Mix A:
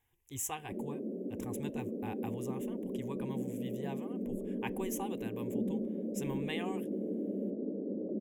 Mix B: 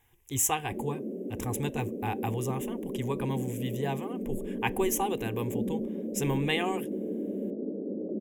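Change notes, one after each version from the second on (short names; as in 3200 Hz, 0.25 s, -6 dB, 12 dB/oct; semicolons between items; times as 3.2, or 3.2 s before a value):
speech +9.0 dB; reverb: on, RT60 0.30 s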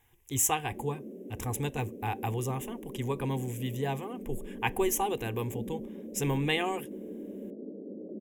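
background -7.5 dB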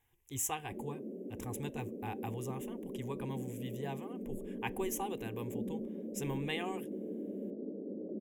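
speech -9.0 dB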